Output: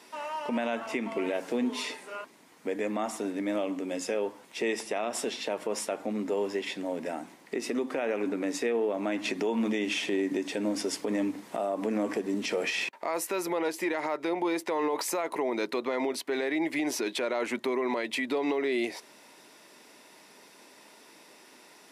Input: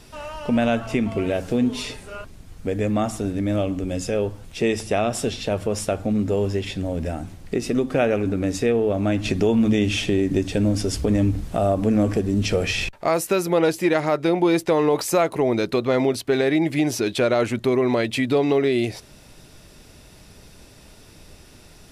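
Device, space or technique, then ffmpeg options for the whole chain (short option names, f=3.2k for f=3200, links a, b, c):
laptop speaker: -af "highpass=f=250:w=0.5412,highpass=f=250:w=1.3066,equalizer=f=960:t=o:w=0.35:g=9,equalizer=f=2k:t=o:w=0.45:g=6.5,alimiter=limit=-15.5dB:level=0:latency=1:release=80,volume=-5dB"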